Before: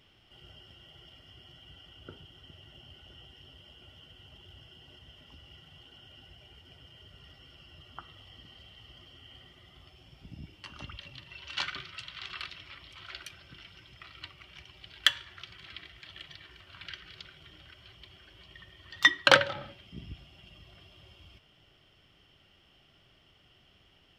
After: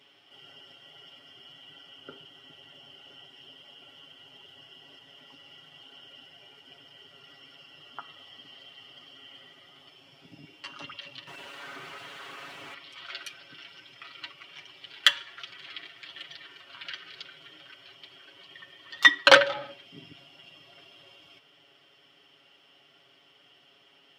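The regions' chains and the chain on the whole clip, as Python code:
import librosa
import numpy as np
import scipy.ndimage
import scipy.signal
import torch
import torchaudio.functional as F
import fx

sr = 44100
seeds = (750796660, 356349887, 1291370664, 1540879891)

y = fx.chain(x, sr, fx.clip_1bit(),
    fx.lowpass(hz=3100.0, slope=6),
    fx.high_shelf(hz=2300.0, db=-9.5), at=(11.27, 12.74))
y = scipy.signal.sosfilt(scipy.signal.butter(2, 300.0, 'highpass', fs=sr, output='sos'), y)
y = fx.high_shelf(y, sr, hz=9900.0, db=-4.0)
y = y + 0.79 * np.pad(y, (int(7.2 * sr / 1000.0), 0))[:len(y)]
y = F.gain(torch.from_numpy(y), 2.5).numpy()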